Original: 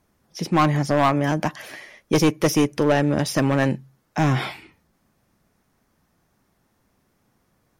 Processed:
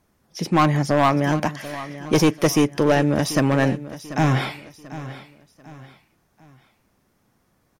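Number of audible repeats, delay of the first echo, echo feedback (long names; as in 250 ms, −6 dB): 3, 739 ms, 37%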